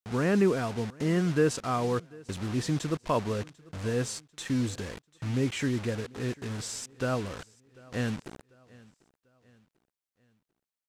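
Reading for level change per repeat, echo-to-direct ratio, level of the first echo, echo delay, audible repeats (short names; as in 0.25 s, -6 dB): -7.5 dB, -22.5 dB, -23.5 dB, 0.744 s, 2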